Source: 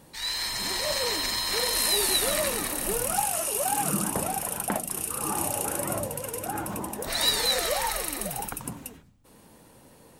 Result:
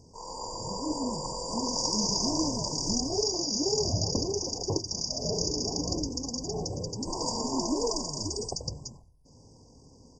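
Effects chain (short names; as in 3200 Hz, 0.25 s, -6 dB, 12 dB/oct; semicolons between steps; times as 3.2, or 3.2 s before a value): pitch shift -11.5 st; brick-wall FIR band-stop 1100–4600 Hz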